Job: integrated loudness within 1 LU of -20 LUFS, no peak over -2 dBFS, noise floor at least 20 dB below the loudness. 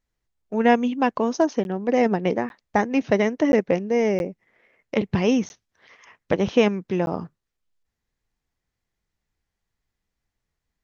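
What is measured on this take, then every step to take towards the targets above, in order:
dropouts 6; longest dropout 11 ms; loudness -22.5 LUFS; peak -6.0 dBFS; loudness target -20.0 LUFS
-> interpolate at 1.64/2.49/3.52/4.19/5.49/7.06, 11 ms; gain +2.5 dB

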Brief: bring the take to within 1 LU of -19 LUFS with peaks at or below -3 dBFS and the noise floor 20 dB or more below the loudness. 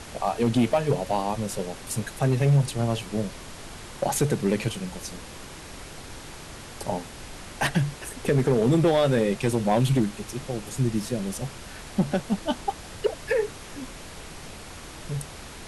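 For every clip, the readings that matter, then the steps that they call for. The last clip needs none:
clipped 0.7%; flat tops at -14.5 dBFS; noise floor -42 dBFS; noise floor target -46 dBFS; loudness -26.0 LUFS; peak -14.5 dBFS; loudness target -19.0 LUFS
-> clip repair -14.5 dBFS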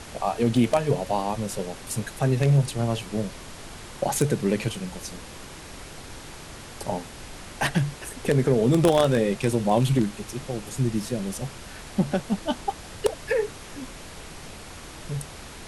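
clipped 0.0%; noise floor -42 dBFS; noise floor target -46 dBFS
-> noise print and reduce 6 dB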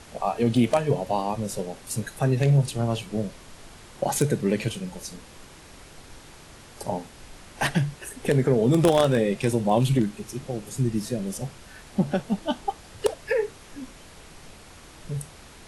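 noise floor -48 dBFS; loudness -25.5 LUFS; peak -5.5 dBFS; loudness target -19.0 LUFS
-> gain +6.5 dB; limiter -3 dBFS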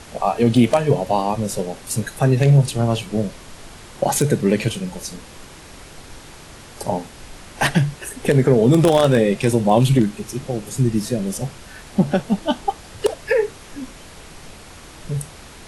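loudness -19.5 LUFS; peak -3.0 dBFS; noise floor -41 dBFS

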